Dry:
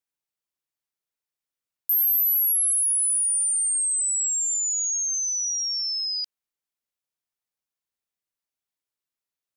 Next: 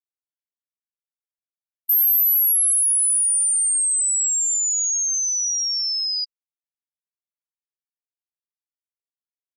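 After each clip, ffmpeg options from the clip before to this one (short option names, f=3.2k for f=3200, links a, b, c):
-af "afftfilt=real='re*gte(hypot(re,im),0.158)':imag='im*gte(hypot(re,im),0.158)':win_size=1024:overlap=0.75,volume=4dB"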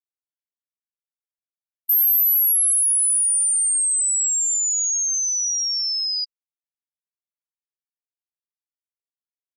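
-af anull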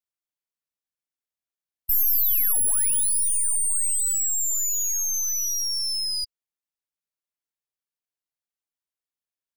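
-af "aeval=exprs='clip(val(0),-1,0.0188)':c=same"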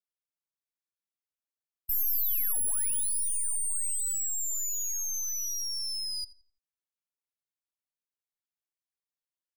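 -filter_complex "[0:a]asplit=2[a][b];[b]adelay=85,lowpass=f=3.2k:p=1,volume=-15dB,asplit=2[c][d];[d]adelay=85,lowpass=f=3.2k:p=1,volume=0.41,asplit=2[e][f];[f]adelay=85,lowpass=f=3.2k:p=1,volume=0.41,asplit=2[g][h];[h]adelay=85,lowpass=f=3.2k:p=1,volume=0.41[i];[a][c][e][g][i]amix=inputs=5:normalize=0,volume=-7.5dB"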